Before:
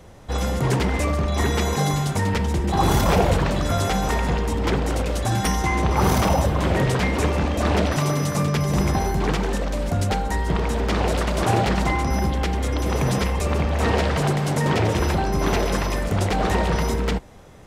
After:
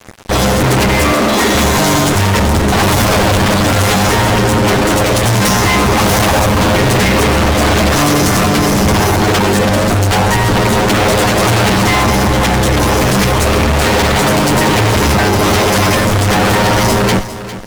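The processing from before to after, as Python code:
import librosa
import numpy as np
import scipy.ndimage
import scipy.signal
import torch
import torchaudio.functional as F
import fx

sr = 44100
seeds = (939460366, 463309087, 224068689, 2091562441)

p1 = fx.lower_of_two(x, sr, delay_ms=9.6)
p2 = fx.cheby1_highpass(p1, sr, hz=200.0, order=10, at=(1.12, 1.55))
p3 = fx.fuzz(p2, sr, gain_db=35.0, gate_db=-42.0)
p4 = p3 + fx.echo_feedback(p3, sr, ms=403, feedback_pct=24, wet_db=-13.5, dry=0)
y = p4 * 10.0 ** (3.5 / 20.0)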